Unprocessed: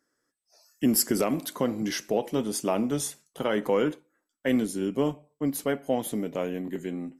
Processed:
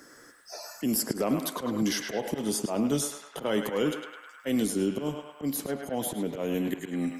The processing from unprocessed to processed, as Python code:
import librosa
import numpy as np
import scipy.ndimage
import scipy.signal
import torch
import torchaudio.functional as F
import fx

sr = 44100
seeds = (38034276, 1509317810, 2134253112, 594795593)

y = fx.dynamic_eq(x, sr, hz=1900.0, q=1.2, threshold_db=-47.0, ratio=4.0, max_db=-5)
y = fx.auto_swell(y, sr, attack_ms=206.0)
y = fx.echo_banded(y, sr, ms=104, feedback_pct=61, hz=1500.0, wet_db=-3.5)
y = fx.band_squash(y, sr, depth_pct=70)
y = y * librosa.db_to_amplitude(3.0)